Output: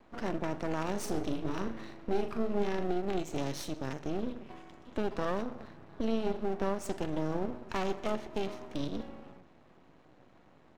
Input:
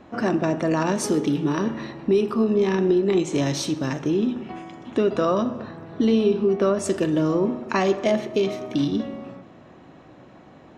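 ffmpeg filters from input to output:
ffmpeg -i in.wav -filter_complex "[0:a]aeval=exprs='max(val(0),0)':channel_layout=same,asplit=3[link_01][link_02][link_03];[link_01]afade=type=out:start_time=0.93:duration=0.02[link_04];[link_02]asplit=2[link_05][link_06];[link_06]adelay=39,volume=-7dB[link_07];[link_05][link_07]amix=inputs=2:normalize=0,afade=type=in:start_time=0.93:duration=0.02,afade=type=out:start_time=2.84:duration=0.02[link_08];[link_03]afade=type=in:start_time=2.84:duration=0.02[link_09];[link_04][link_08][link_09]amix=inputs=3:normalize=0,volume=-9dB" out.wav

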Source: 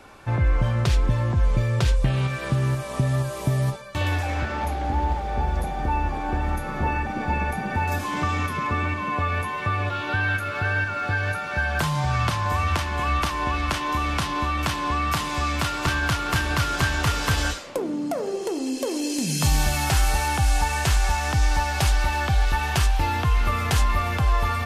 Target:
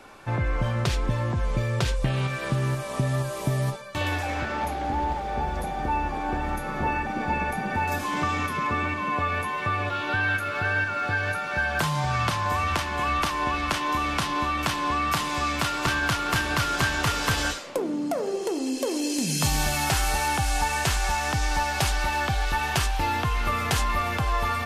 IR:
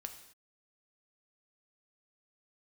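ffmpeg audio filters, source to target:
-af "equalizer=frequency=63:width_type=o:width=1.7:gain=-8.5"

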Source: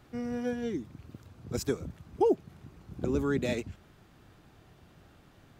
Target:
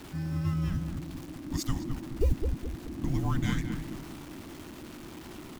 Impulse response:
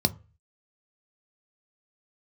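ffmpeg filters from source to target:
-filter_complex "[0:a]aeval=exprs='val(0)+0.5*0.00841*sgn(val(0))':channel_layout=same,acrusher=bits=8:mode=log:mix=0:aa=0.000001,asplit=2[link_01][link_02];[link_02]adelay=211,lowpass=frequency=1400:poles=1,volume=-4.5dB,asplit=2[link_03][link_04];[link_04]adelay=211,lowpass=frequency=1400:poles=1,volume=0.44,asplit=2[link_05][link_06];[link_06]adelay=211,lowpass=frequency=1400:poles=1,volume=0.44,asplit=2[link_07][link_08];[link_08]adelay=211,lowpass=frequency=1400:poles=1,volume=0.44,asplit=2[link_09][link_10];[link_10]adelay=211,lowpass=frequency=1400:poles=1,volume=0.44[link_11];[link_03][link_05][link_07][link_09][link_11]amix=inputs=5:normalize=0[link_12];[link_01][link_12]amix=inputs=2:normalize=0,afreqshift=-400"

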